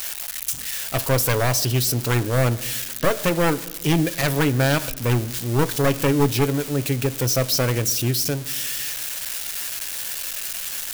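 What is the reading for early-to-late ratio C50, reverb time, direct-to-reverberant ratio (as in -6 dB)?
19.0 dB, 1.3 s, 11.0 dB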